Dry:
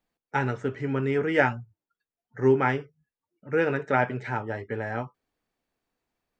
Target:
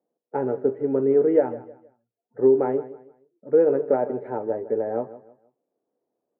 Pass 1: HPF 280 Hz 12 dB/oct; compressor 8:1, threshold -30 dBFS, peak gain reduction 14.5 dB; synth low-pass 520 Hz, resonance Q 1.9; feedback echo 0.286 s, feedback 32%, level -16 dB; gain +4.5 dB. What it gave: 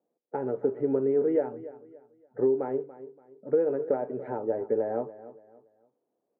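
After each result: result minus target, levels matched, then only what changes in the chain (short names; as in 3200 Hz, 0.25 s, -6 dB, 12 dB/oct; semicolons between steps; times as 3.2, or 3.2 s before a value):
echo 0.129 s late; compressor: peak gain reduction +8 dB
change: feedback echo 0.157 s, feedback 32%, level -16 dB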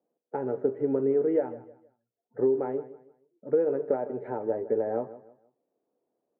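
compressor: peak gain reduction +8 dB
change: compressor 8:1, threshold -21 dBFS, peak gain reduction 6.5 dB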